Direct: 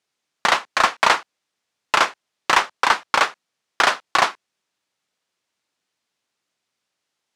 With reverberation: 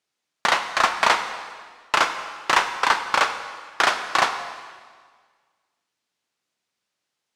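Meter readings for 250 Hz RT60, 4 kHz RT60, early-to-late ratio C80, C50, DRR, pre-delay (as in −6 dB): 1.8 s, 1.5 s, 10.0 dB, 9.0 dB, 7.5 dB, 7 ms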